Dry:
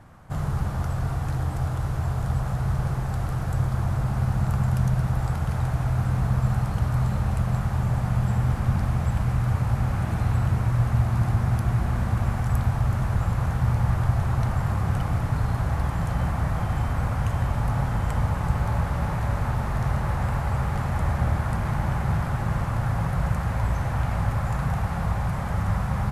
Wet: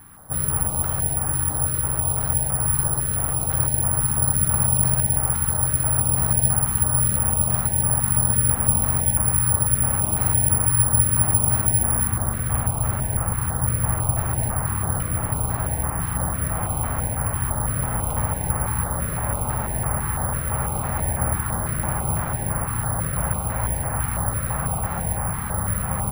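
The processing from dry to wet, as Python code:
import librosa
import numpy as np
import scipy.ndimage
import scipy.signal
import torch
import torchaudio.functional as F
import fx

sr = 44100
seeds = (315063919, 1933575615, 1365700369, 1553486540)

y = (np.kron(x[::4], np.eye(4)[0]) * 4)[:len(x)]
y = fx.bass_treble(y, sr, bass_db=-6, treble_db=fx.steps((0.0, -8.0), (12.07, -15.0)))
y = fx.filter_held_notch(y, sr, hz=6.0, low_hz=590.0, high_hz=7800.0)
y = y * librosa.db_to_amplitude(4.0)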